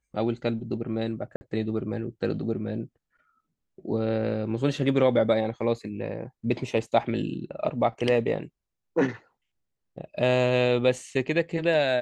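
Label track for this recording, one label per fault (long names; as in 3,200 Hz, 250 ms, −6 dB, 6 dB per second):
1.360000	1.410000	drop-out 50 ms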